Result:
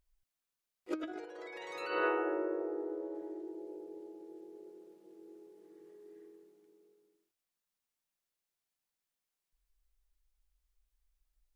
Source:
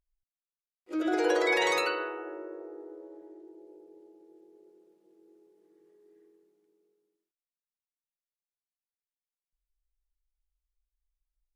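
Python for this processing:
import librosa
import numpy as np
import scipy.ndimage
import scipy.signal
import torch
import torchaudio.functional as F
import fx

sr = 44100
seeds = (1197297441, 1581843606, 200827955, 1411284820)

y = fx.high_shelf(x, sr, hz=3300.0, db=-5.0, at=(0.92, 3.15))
y = fx.over_compress(y, sr, threshold_db=-35.0, ratio=-0.5)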